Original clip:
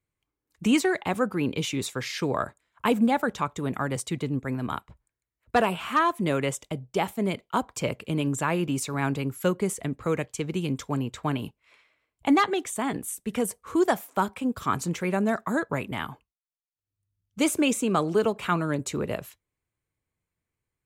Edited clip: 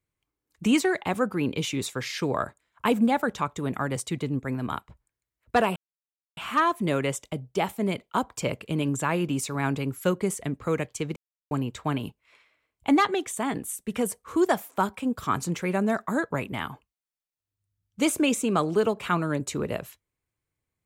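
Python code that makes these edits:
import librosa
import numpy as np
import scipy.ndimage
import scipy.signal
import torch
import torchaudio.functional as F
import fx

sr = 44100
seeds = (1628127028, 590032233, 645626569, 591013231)

y = fx.edit(x, sr, fx.insert_silence(at_s=5.76, length_s=0.61),
    fx.silence(start_s=10.55, length_s=0.35), tone=tone)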